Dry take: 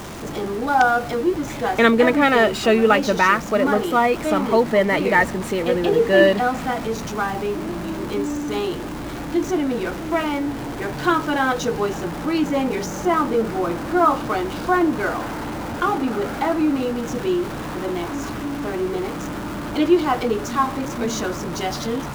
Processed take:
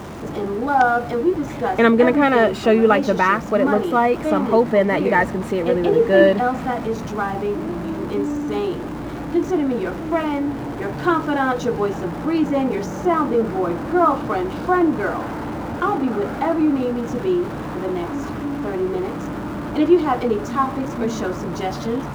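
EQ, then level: HPF 46 Hz; high shelf 2200 Hz -10.5 dB; +2.0 dB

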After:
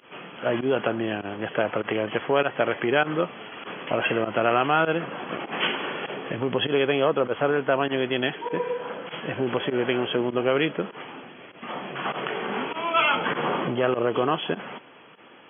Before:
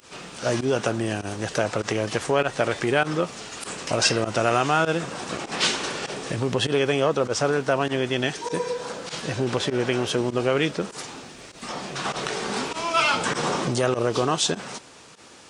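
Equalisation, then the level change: HPF 170 Hz 12 dB/oct; brick-wall FIR low-pass 3400 Hz; 0.0 dB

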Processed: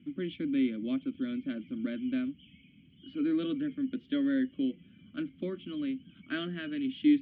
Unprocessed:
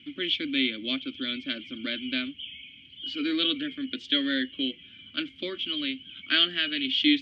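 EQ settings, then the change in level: LPF 1100 Hz 12 dB/oct; bell 180 Hz +12.5 dB 0.81 oct; -3.0 dB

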